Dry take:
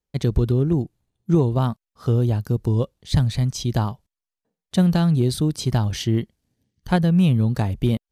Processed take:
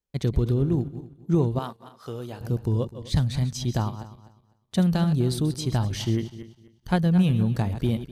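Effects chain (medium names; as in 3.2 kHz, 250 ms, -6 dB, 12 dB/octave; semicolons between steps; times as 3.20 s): backward echo that repeats 126 ms, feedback 46%, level -11.5 dB; 1.59–2.41 s: high-pass 740 Hz 6 dB/octave; trim -4 dB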